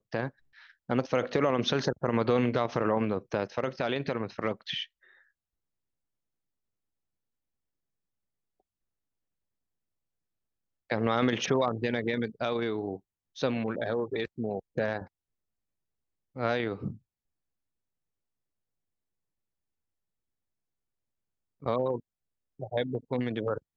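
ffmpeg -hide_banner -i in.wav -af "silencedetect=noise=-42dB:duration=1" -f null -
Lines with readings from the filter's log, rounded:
silence_start: 4.84
silence_end: 10.90 | silence_duration: 6.06
silence_start: 15.05
silence_end: 16.36 | silence_duration: 1.31
silence_start: 16.95
silence_end: 21.63 | silence_duration: 4.67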